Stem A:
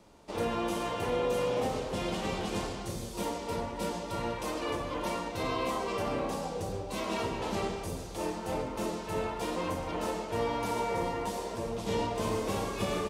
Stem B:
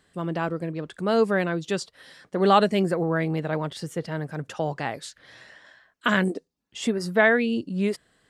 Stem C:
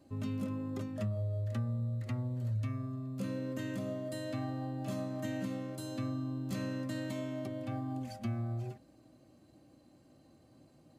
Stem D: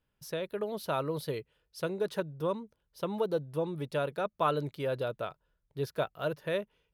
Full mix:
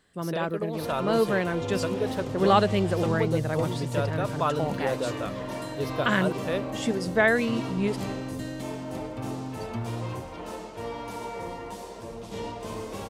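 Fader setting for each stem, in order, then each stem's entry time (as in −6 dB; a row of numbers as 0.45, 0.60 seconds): −4.0, −2.5, +2.5, +2.0 decibels; 0.45, 0.00, 1.50, 0.00 seconds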